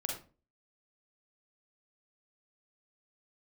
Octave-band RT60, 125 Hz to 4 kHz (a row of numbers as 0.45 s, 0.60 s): 0.45 s, 0.45 s, 0.40 s, 0.30 s, 0.30 s, 0.25 s